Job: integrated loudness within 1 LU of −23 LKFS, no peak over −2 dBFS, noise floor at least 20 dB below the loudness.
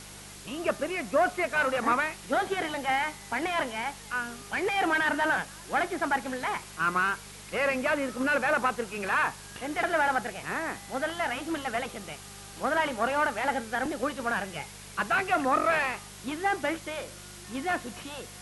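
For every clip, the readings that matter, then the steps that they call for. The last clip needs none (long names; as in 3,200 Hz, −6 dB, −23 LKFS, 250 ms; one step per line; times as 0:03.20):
mains hum 50 Hz; hum harmonics up to 200 Hz; level of the hum −50 dBFS; background noise floor −46 dBFS; target noise floor −49 dBFS; integrated loudness −29.0 LKFS; sample peak −13.0 dBFS; target loudness −23.0 LKFS
→ hum removal 50 Hz, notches 4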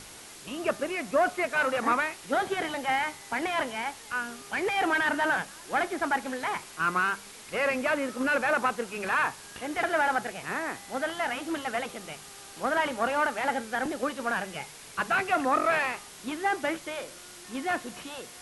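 mains hum none found; background noise floor −47 dBFS; target noise floor −49 dBFS
→ noise reduction from a noise print 6 dB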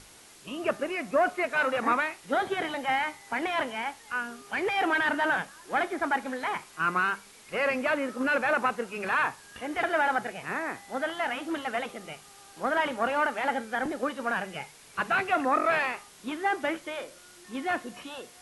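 background noise floor −53 dBFS; integrated loudness −29.0 LKFS; sample peak −13.0 dBFS; target loudness −23.0 LKFS
→ level +6 dB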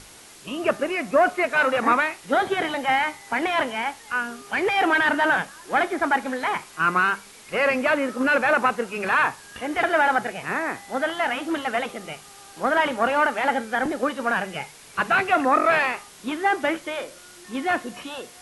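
integrated loudness −23.0 LKFS; sample peak −7.0 dBFS; background noise floor −47 dBFS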